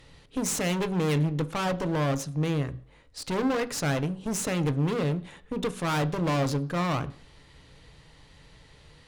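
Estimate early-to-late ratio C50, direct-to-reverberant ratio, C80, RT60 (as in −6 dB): 19.0 dB, 11.0 dB, 22.5 dB, 0.50 s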